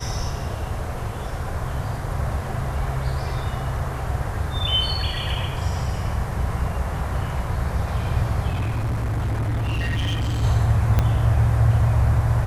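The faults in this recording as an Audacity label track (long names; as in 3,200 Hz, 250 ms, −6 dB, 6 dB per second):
8.490000	10.440000	clipping −20.5 dBFS
10.990000	10.990000	click −7 dBFS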